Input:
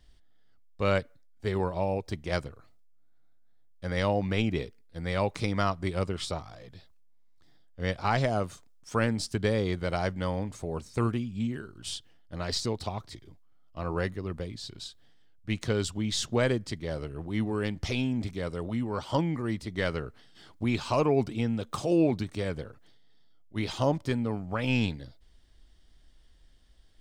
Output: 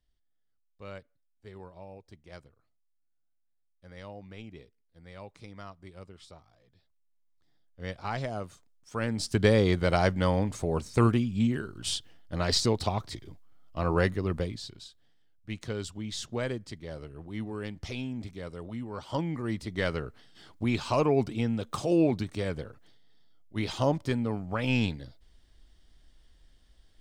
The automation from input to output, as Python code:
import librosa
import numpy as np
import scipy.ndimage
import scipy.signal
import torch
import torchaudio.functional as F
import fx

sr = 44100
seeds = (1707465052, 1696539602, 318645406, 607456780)

y = fx.gain(x, sr, db=fx.line((6.64, -17.5), (7.86, -7.0), (8.93, -7.0), (9.4, 5.0), (14.43, 5.0), (14.85, -6.5), (18.91, -6.5), (19.6, 0.0)))